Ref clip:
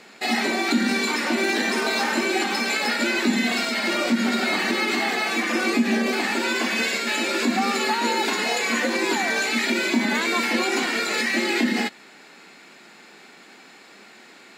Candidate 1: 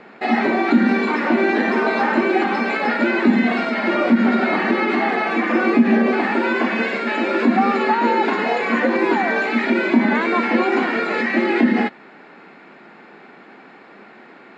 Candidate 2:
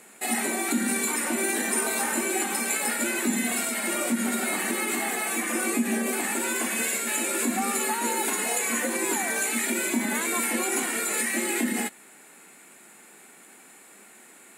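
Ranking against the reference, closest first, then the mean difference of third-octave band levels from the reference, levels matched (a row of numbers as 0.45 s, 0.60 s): 2, 1; 4.5 dB, 8.0 dB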